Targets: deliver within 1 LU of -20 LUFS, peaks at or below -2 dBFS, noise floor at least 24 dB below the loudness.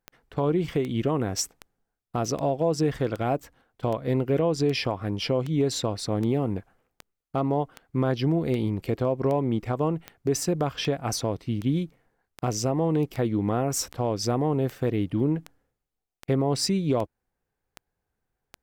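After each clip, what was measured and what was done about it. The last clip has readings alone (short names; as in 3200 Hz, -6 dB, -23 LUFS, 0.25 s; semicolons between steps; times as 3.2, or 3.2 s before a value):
clicks 25; loudness -27.0 LUFS; peak -12.0 dBFS; loudness target -20.0 LUFS
-> de-click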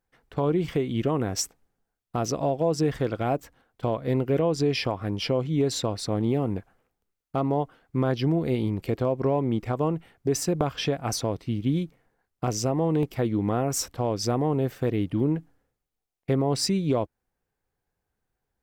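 clicks 0; loudness -27.0 LUFS; peak -8.0 dBFS; loudness target -20.0 LUFS
-> gain +7 dB; limiter -2 dBFS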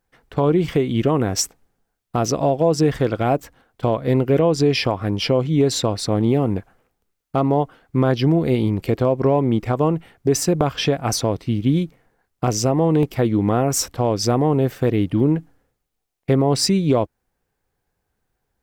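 loudness -20.0 LUFS; peak -2.0 dBFS; noise floor -76 dBFS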